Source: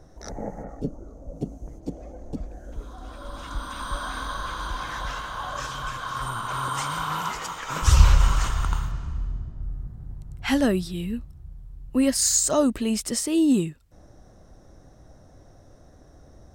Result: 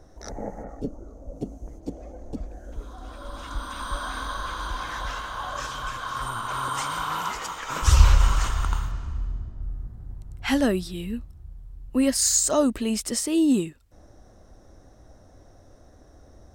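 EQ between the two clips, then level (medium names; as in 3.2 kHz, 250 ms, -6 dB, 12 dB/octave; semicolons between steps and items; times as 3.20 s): peaking EQ 150 Hz -7.5 dB 0.49 oct; 0.0 dB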